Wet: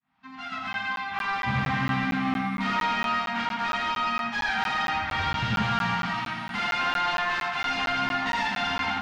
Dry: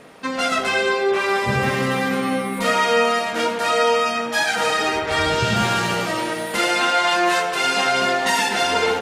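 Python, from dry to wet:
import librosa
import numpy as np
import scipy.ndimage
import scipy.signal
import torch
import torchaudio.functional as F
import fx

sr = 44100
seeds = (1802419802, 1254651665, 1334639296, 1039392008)

y = fx.fade_in_head(x, sr, length_s=1.45)
y = scipy.signal.sosfilt(scipy.signal.ellip(3, 1.0, 40, [260.0, 760.0], 'bandstop', fs=sr, output='sos'), y)
y = fx.mod_noise(y, sr, seeds[0], snr_db=20)
y = np.clip(10.0 ** (20.5 / 20.0) * y, -1.0, 1.0) / 10.0 ** (20.5 / 20.0)
y = fx.air_absorb(y, sr, metres=230.0)
y = y + 10.0 ** (-4.5 / 20.0) * np.pad(y, (int(83 * sr / 1000.0), 0))[:len(y)]
y = fx.buffer_crackle(y, sr, first_s=0.73, period_s=0.23, block=512, kind='zero')
y = y * librosa.db_to_amplitude(-2.0)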